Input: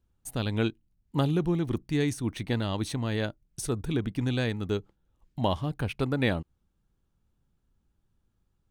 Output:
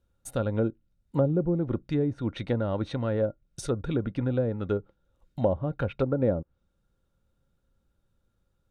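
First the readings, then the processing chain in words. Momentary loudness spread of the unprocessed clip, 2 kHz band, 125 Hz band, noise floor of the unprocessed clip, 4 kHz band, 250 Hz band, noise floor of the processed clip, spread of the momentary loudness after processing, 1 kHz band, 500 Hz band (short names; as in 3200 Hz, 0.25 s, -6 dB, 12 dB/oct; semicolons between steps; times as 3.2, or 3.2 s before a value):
7 LU, -7.0 dB, 0.0 dB, -74 dBFS, -10.0 dB, +0.5 dB, -74 dBFS, 7 LU, -2.5 dB, +4.5 dB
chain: small resonant body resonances 540/1400/3700 Hz, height 13 dB, ringing for 45 ms; treble ducked by the level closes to 600 Hz, closed at -21 dBFS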